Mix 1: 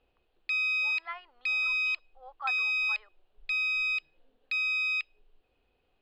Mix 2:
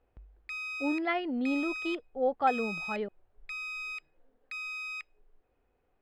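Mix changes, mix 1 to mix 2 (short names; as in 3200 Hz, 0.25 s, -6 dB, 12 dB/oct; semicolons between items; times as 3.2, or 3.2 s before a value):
speech: remove ladder high-pass 1000 Hz, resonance 65%; background: add band shelf 3500 Hz -13 dB 1.1 oct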